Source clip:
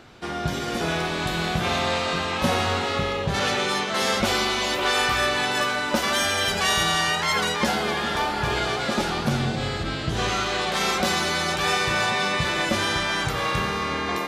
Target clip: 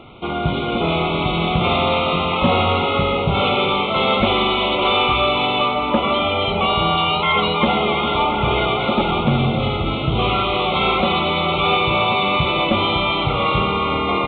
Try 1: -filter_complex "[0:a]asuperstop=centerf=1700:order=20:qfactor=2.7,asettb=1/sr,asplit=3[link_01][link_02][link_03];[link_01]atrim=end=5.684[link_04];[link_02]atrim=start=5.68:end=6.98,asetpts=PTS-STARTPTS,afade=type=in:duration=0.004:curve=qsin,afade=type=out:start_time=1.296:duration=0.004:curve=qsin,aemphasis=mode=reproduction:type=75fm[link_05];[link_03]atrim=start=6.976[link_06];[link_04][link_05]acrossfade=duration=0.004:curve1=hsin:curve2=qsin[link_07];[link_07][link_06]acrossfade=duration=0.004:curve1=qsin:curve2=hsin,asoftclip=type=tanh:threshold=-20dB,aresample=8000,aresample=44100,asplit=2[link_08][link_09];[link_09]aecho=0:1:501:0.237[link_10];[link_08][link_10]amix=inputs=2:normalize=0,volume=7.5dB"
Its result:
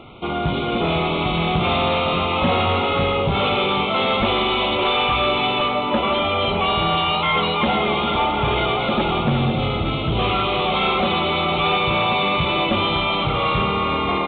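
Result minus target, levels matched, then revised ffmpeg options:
soft clipping: distortion +10 dB; echo 186 ms early
-filter_complex "[0:a]asuperstop=centerf=1700:order=20:qfactor=2.7,asettb=1/sr,asplit=3[link_01][link_02][link_03];[link_01]atrim=end=5.684[link_04];[link_02]atrim=start=5.68:end=6.98,asetpts=PTS-STARTPTS,afade=type=in:duration=0.004:curve=qsin,afade=type=out:start_time=1.296:duration=0.004:curve=qsin,aemphasis=mode=reproduction:type=75fm[link_05];[link_03]atrim=start=6.976[link_06];[link_04][link_05]acrossfade=duration=0.004:curve1=hsin:curve2=qsin[link_07];[link_07][link_06]acrossfade=duration=0.004:curve1=qsin:curve2=hsin,asoftclip=type=tanh:threshold=-12.5dB,aresample=8000,aresample=44100,asplit=2[link_08][link_09];[link_09]aecho=0:1:687:0.237[link_10];[link_08][link_10]amix=inputs=2:normalize=0,volume=7.5dB"

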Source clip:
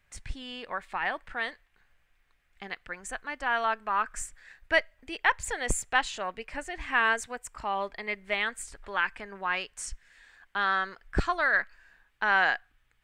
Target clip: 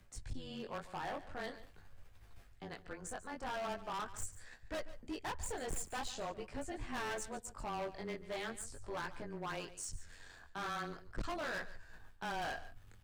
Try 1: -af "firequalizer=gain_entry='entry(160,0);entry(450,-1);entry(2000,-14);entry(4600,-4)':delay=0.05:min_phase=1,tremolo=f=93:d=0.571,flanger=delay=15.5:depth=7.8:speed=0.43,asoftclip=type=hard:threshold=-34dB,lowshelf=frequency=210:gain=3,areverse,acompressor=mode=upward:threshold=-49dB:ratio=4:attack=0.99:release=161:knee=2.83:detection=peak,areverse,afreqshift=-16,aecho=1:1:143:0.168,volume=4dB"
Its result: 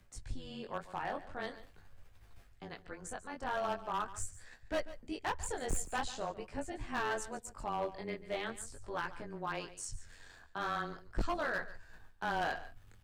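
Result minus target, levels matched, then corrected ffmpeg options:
hard clipping: distortion −6 dB
-af "firequalizer=gain_entry='entry(160,0);entry(450,-1);entry(2000,-14);entry(4600,-4)':delay=0.05:min_phase=1,tremolo=f=93:d=0.571,flanger=delay=15.5:depth=7.8:speed=0.43,asoftclip=type=hard:threshold=-42dB,lowshelf=frequency=210:gain=3,areverse,acompressor=mode=upward:threshold=-49dB:ratio=4:attack=0.99:release=161:knee=2.83:detection=peak,areverse,afreqshift=-16,aecho=1:1:143:0.168,volume=4dB"

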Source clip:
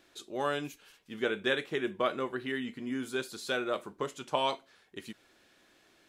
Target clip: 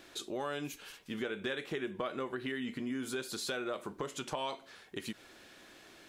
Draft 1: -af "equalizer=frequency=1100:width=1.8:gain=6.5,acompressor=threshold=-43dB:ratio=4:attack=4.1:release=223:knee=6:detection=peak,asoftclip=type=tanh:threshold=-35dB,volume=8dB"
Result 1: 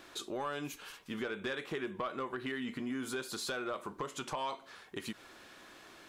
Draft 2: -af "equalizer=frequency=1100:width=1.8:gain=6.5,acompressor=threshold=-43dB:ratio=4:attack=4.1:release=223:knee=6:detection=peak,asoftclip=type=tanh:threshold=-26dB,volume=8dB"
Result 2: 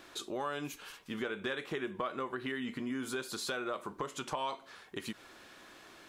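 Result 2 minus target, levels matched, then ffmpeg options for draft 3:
1,000 Hz band +3.0 dB
-af "acompressor=threshold=-43dB:ratio=4:attack=4.1:release=223:knee=6:detection=peak,asoftclip=type=tanh:threshold=-26dB,volume=8dB"

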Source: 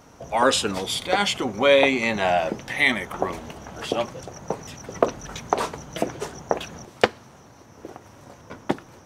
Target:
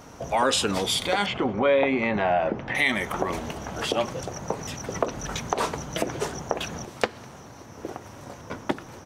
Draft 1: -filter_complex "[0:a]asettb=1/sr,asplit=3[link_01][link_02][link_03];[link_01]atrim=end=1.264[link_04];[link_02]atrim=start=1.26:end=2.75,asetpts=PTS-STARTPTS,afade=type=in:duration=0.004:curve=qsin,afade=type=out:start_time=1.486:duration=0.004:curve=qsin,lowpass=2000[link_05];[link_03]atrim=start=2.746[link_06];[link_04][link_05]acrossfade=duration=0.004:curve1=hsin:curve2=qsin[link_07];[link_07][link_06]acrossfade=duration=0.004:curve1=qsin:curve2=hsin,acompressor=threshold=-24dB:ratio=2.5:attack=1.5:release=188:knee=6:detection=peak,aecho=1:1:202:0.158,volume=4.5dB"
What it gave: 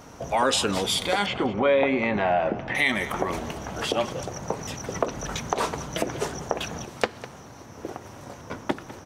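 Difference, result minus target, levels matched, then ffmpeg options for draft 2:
echo-to-direct +12 dB
-filter_complex "[0:a]asettb=1/sr,asplit=3[link_01][link_02][link_03];[link_01]atrim=end=1.264[link_04];[link_02]atrim=start=1.26:end=2.75,asetpts=PTS-STARTPTS,afade=type=in:duration=0.004:curve=qsin,afade=type=out:start_time=1.486:duration=0.004:curve=qsin,lowpass=2000[link_05];[link_03]atrim=start=2.746[link_06];[link_04][link_05]acrossfade=duration=0.004:curve1=hsin:curve2=qsin[link_07];[link_07][link_06]acrossfade=duration=0.004:curve1=qsin:curve2=hsin,acompressor=threshold=-24dB:ratio=2.5:attack=1.5:release=188:knee=6:detection=peak,aecho=1:1:202:0.0398,volume=4.5dB"

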